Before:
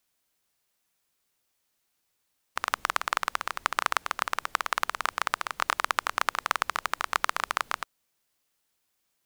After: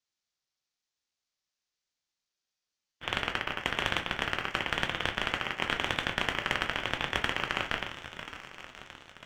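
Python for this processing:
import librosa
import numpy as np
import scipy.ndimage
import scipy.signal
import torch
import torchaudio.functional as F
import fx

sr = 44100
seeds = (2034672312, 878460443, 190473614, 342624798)

p1 = fx.spec_quant(x, sr, step_db=30)
p2 = fx.ladder_lowpass(p1, sr, hz=6200.0, resonance_pct=50)
p3 = fx.low_shelf(p2, sr, hz=390.0, db=-8.5)
p4 = p3 + fx.echo_swing(p3, sr, ms=1036, ratio=1.5, feedback_pct=50, wet_db=-16.0, dry=0)
p5 = fx.leveller(p4, sr, passes=2)
p6 = fx.room_shoebox(p5, sr, seeds[0], volume_m3=180.0, walls='furnished', distance_m=1.1)
p7 = fx.spec_freeze(p6, sr, seeds[1], at_s=2.34, hold_s=0.68)
p8 = fx.ring_lfo(p7, sr, carrier_hz=700.0, swing_pct=20, hz=1.0)
y = p8 * 10.0 ** (4.0 / 20.0)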